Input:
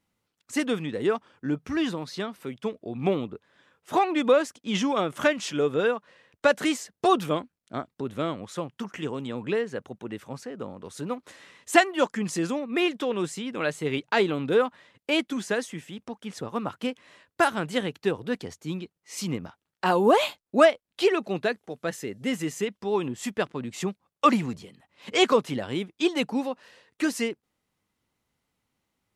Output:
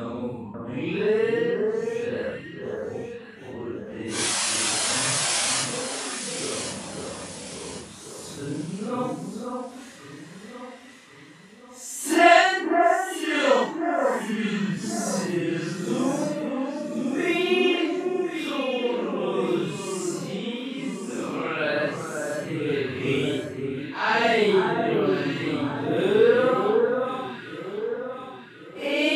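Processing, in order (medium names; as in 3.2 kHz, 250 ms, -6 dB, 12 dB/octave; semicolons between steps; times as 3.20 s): painted sound noise, 10.15–10.45 s, 520–11000 Hz -25 dBFS; Paulstretch 5×, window 0.05 s, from 9.32 s; echo whose repeats swap between lows and highs 542 ms, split 1.6 kHz, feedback 64%, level -4 dB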